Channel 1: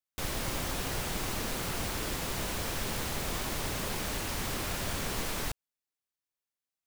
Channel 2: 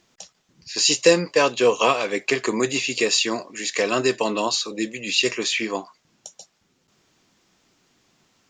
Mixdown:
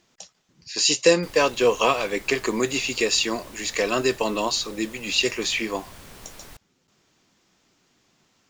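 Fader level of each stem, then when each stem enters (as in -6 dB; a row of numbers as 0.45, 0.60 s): -10.5, -1.5 dB; 1.05, 0.00 s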